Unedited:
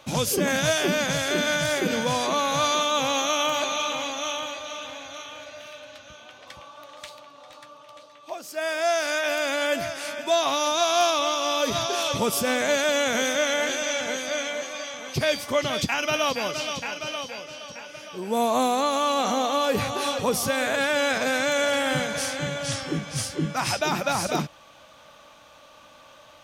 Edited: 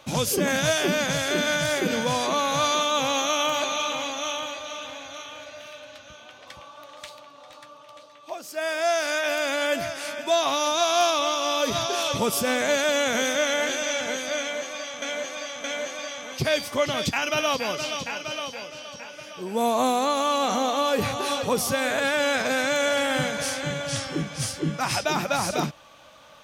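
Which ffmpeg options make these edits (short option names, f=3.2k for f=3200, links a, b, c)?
-filter_complex "[0:a]asplit=3[a][b][c];[a]atrim=end=15.022[d];[b]atrim=start=14.398:end=15.022[e];[c]atrim=start=14.398[f];[d][e]acrossfade=d=0.004:c1=hsin:c2=hsin[g];[g][f]acrossfade=d=0.004:c1=hsin:c2=hsin"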